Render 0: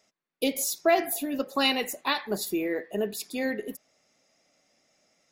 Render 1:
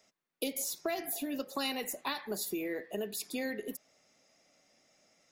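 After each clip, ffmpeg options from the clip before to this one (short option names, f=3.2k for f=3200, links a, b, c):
-filter_complex "[0:a]acrossover=split=210|2800|5600[a][b][c][d];[a]acompressor=threshold=-50dB:ratio=4[e];[b]acompressor=threshold=-36dB:ratio=4[f];[c]acompressor=threshold=-48dB:ratio=4[g];[d]acompressor=threshold=-36dB:ratio=4[h];[e][f][g][h]amix=inputs=4:normalize=0"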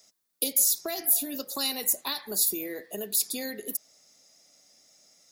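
-af "aexciter=amount=4.7:drive=2.6:freq=3.7k"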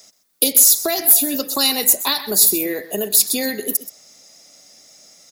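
-filter_complex "[0:a]asplit=2[a][b];[b]aeval=exprs='0.376*sin(PI/2*1.78*val(0)/0.376)':c=same,volume=-8.5dB[c];[a][c]amix=inputs=2:normalize=0,aecho=1:1:127:0.178,volume=6dB"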